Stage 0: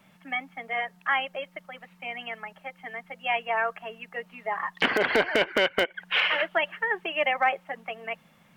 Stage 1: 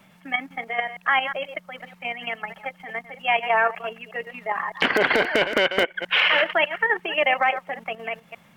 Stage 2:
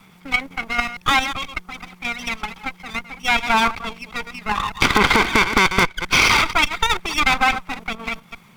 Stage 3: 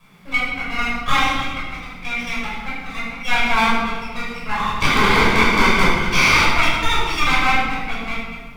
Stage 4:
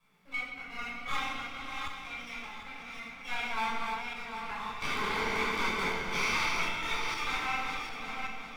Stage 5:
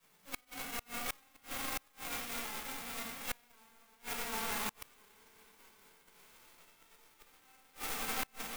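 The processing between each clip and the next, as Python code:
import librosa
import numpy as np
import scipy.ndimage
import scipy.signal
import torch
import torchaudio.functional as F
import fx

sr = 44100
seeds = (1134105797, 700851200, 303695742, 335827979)

y1 = fx.reverse_delay(x, sr, ms=121, wet_db=-12.0)
y1 = fx.level_steps(y1, sr, step_db=9)
y1 = y1 * librosa.db_to_amplitude(8.5)
y2 = fx.lower_of_two(y1, sr, delay_ms=0.87)
y2 = y2 * librosa.db_to_amplitude(6.0)
y3 = fx.room_shoebox(y2, sr, seeds[0], volume_m3=980.0, walls='mixed', distance_m=5.6)
y3 = y3 * librosa.db_to_amplitude(-10.0)
y4 = fx.reverse_delay_fb(y3, sr, ms=376, feedback_pct=53, wet_db=-4.0)
y4 = fx.low_shelf(y4, sr, hz=200.0, db=-8.0)
y4 = fx.comb_fb(y4, sr, f0_hz=440.0, decay_s=0.53, harmonics='all', damping=0.0, mix_pct=70)
y4 = y4 * librosa.db_to_amplitude(-7.0)
y5 = fx.envelope_flatten(y4, sr, power=0.3)
y5 = fx.gate_flip(y5, sr, shuts_db=-24.0, range_db=-32)
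y5 = fx.clock_jitter(y5, sr, seeds[1], jitter_ms=0.052)
y5 = y5 * librosa.db_to_amplitude(1.0)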